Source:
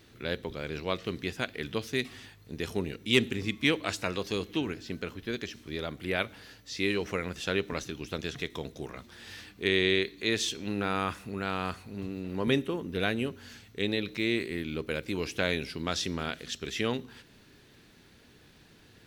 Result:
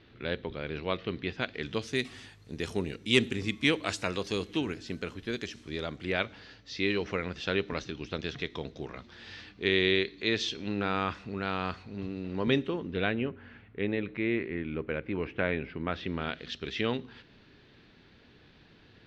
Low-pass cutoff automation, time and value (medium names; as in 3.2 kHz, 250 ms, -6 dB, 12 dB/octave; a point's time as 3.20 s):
low-pass 24 dB/octave
1.27 s 3.9 kHz
1.97 s 9.9 kHz
5.50 s 9.9 kHz
6.48 s 5.1 kHz
12.74 s 5.1 kHz
13.33 s 2.4 kHz
15.87 s 2.4 kHz
16.46 s 4.4 kHz